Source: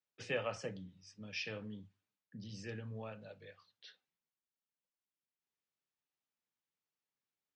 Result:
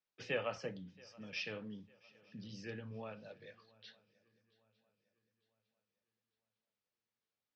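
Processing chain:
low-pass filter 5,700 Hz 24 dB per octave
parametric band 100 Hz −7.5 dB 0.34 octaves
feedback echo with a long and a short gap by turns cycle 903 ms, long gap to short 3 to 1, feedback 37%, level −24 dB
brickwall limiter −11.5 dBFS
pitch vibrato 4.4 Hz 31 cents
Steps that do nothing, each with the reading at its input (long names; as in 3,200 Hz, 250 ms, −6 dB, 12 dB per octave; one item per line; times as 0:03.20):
brickwall limiter −11.5 dBFS: peak of its input −24.0 dBFS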